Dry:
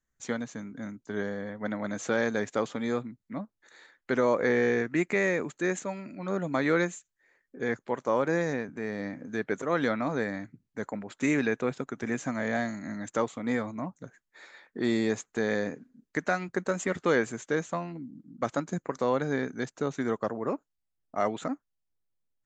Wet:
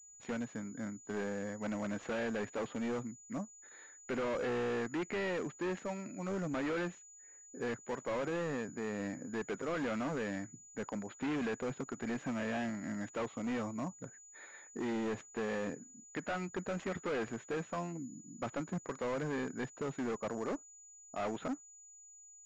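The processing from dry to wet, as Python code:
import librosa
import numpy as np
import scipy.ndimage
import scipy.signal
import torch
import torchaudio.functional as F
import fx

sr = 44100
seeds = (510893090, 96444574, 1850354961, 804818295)

y = np.clip(x, -10.0 ** (-30.0 / 20.0), 10.0 ** (-30.0 / 20.0))
y = fx.pwm(y, sr, carrier_hz=6900.0)
y = y * 10.0 ** (-3.0 / 20.0)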